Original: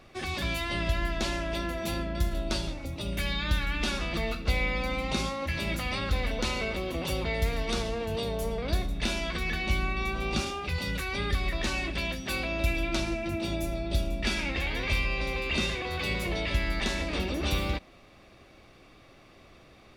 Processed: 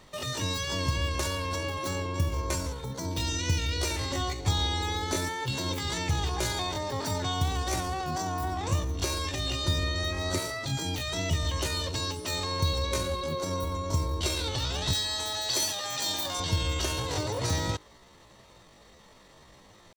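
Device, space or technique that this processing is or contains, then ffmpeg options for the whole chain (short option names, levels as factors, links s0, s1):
chipmunk voice: -filter_complex "[0:a]asettb=1/sr,asplit=3[s0][s1][s2];[s0]atrim=end=14.944[s3];[s1]atrim=start=14.94:end=16.41,asetpts=PTS-STARTPTS,afade=t=in:d=0.004:c=qsin,afade=t=out:st=1.466:d=0.004:c=qsin,aemphasis=mode=production:type=bsi[s4];[s2]atrim=start=16.406[s5];[s3][s4]acrossfade=d=0.004:c1=hsin:c2=qsin[s6];[s6][s5]acrossfade=d=0.004:c1=qsin:c2=hsin,asetrate=72056,aresample=44100,atempo=0.612027"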